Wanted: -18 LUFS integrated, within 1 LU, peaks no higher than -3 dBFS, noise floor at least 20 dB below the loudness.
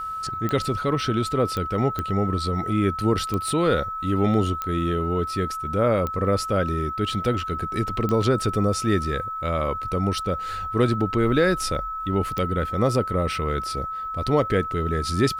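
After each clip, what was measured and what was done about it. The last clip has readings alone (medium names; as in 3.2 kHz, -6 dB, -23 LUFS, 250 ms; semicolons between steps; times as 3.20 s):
clicks found 8; steady tone 1.3 kHz; tone level -28 dBFS; loudness -24.0 LUFS; peak level -7.0 dBFS; loudness target -18.0 LUFS
-> de-click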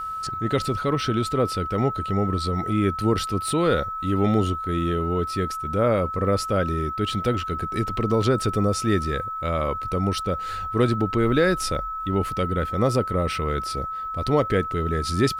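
clicks found 0; steady tone 1.3 kHz; tone level -28 dBFS
-> band-stop 1.3 kHz, Q 30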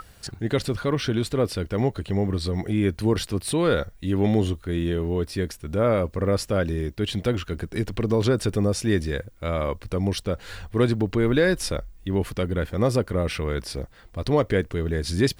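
steady tone not found; loudness -25.0 LUFS; peak level -8.0 dBFS; loudness target -18.0 LUFS
-> trim +7 dB; peak limiter -3 dBFS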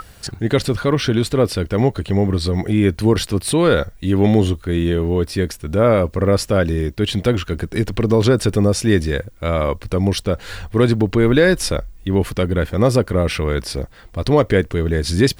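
loudness -18.0 LUFS; peak level -3.0 dBFS; noise floor -43 dBFS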